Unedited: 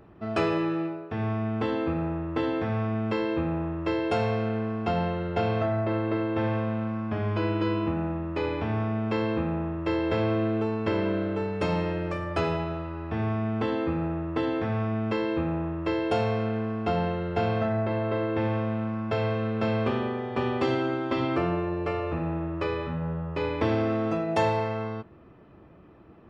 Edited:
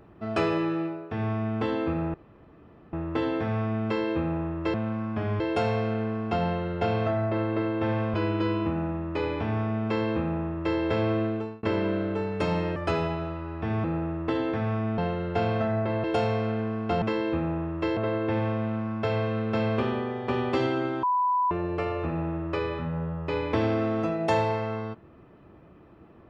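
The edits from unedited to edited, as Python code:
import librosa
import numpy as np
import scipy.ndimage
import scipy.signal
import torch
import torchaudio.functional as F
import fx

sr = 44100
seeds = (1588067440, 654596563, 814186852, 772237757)

y = fx.edit(x, sr, fx.insert_room_tone(at_s=2.14, length_s=0.79),
    fx.move(start_s=6.69, length_s=0.66, to_s=3.95),
    fx.fade_out_span(start_s=10.3, length_s=0.54, curve='qsin'),
    fx.cut(start_s=11.97, length_s=0.28),
    fx.cut(start_s=13.33, length_s=0.59),
    fx.swap(start_s=15.06, length_s=0.95, other_s=16.99, other_length_s=1.06),
    fx.bleep(start_s=21.11, length_s=0.48, hz=993.0, db=-21.0), tone=tone)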